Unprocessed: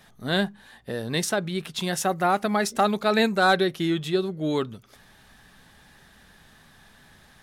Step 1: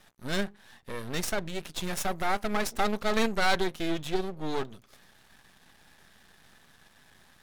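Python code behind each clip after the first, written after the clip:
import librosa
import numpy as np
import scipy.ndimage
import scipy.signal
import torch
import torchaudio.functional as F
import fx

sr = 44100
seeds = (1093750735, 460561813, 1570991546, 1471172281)

y = fx.low_shelf(x, sr, hz=160.0, db=-5.0)
y = np.maximum(y, 0.0)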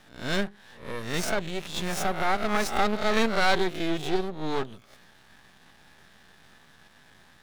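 y = fx.spec_swells(x, sr, rise_s=0.44)
y = fx.peak_eq(y, sr, hz=13000.0, db=-7.0, octaves=1.4)
y = y * librosa.db_to_amplitude(2.0)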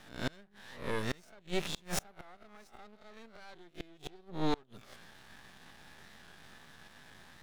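y = fx.gate_flip(x, sr, shuts_db=-18.0, range_db=-30)
y = fx.record_warp(y, sr, rpm=45.0, depth_cents=100.0)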